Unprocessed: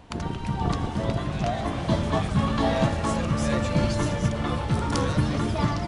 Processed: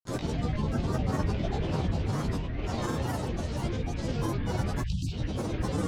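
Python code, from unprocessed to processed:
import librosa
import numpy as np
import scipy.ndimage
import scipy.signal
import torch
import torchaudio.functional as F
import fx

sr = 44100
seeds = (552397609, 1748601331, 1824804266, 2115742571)

y = scipy.signal.sosfilt(scipy.signal.butter(2, 5700.0, 'lowpass', fs=sr, output='sos'), x)
y = fx.peak_eq(y, sr, hz=1300.0, db=-11.0, octaves=1.9)
y = y + 10.0 ** (-10.0 / 20.0) * np.pad(y, (int(585 * sr / 1000.0), 0))[:len(y)]
y = fx.over_compress(y, sr, threshold_db=-29.0, ratio=-1.0)
y = 10.0 ** (-21.0 / 20.0) * np.tanh(y / 10.0 ** (-21.0 / 20.0))
y = fx.spec_erase(y, sr, start_s=4.68, length_s=0.47, low_hz=240.0, high_hz=2800.0)
y = fx.doubler(y, sr, ms=16.0, db=-2)
y = fx.rev_gated(y, sr, seeds[0], gate_ms=170, shape='flat', drr_db=-5.0)
y = fx.granulator(y, sr, seeds[1], grain_ms=100.0, per_s=20.0, spray_ms=100.0, spread_st=12)
y = F.gain(torch.from_numpy(y), -6.0).numpy()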